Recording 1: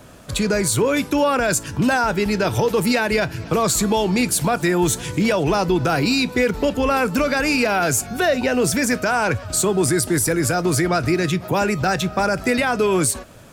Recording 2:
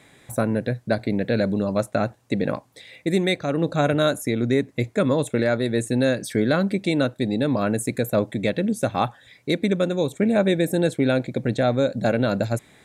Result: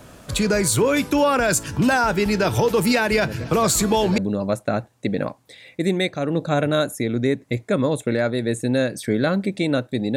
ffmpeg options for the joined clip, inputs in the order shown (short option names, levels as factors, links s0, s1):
-filter_complex "[1:a]asplit=2[s0][s1];[0:a]apad=whole_dur=10.16,atrim=end=10.16,atrim=end=4.182[s2];[s1]atrim=start=1.448:end=7.43[s3];[s0]atrim=start=0.5:end=1.45,asetpts=PTS-STARTPTS,volume=0.316,afade=t=in:d=0.004:c=hsin,afade=t=out:st=0.946:d=0.004:c=hsin,adelay=3230[s4];[s2][s3]acrossfade=d=0.004:c1=hsin:c2=hsin[s5];[s5][s4]amix=inputs=2:normalize=0"